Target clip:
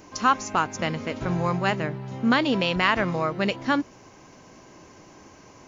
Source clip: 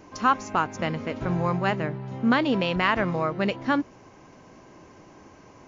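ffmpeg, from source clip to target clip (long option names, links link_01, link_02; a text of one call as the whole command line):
ffmpeg -i in.wav -af "highshelf=frequency=3800:gain=10" out.wav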